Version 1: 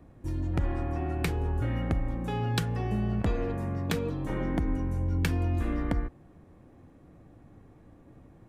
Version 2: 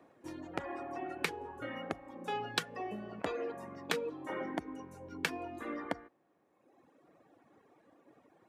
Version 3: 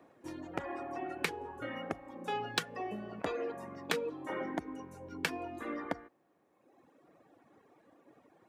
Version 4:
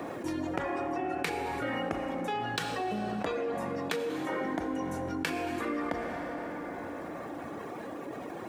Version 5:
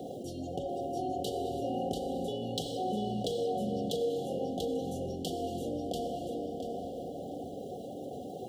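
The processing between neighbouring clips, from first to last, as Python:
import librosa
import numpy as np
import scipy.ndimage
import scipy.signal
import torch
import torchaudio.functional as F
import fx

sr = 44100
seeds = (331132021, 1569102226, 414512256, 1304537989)

y1 = fx.dereverb_blind(x, sr, rt60_s=1.6)
y1 = scipy.signal.sosfilt(scipy.signal.butter(2, 420.0, 'highpass', fs=sr, output='sos'), y1)
y1 = fx.high_shelf(y1, sr, hz=9300.0, db=-9.0)
y1 = y1 * librosa.db_to_amplitude(1.0)
y2 = np.clip(y1, -10.0 ** (-19.0 / 20.0), 10.0 ** (-19.0 / 20.0))
y2 = y2 * librosa.db_to_amplitude(1.0)
y3 = fx.rider(y2, sr, range_db=4, speed_s=0.5)
y3 = fx.rev_plate(y3, sr, seeds[0], rt60_s=4.0, hf_ratio=0.6, predelay_ms=0, drr_db=9.0)
y3 = fx.env_flatten(y3, sr, amount_pct=70)
y4 = fx.brickwall_bandstop(y3, sr, low_hz=800.0, high_hz=2800.0)
y4 = fx.notch_comb(y4, sr, f0_hz=320.0)
y4 = fx.echo_feedback(y4, sr, ms=689, feedback_pct=23, wet_db=-3.5)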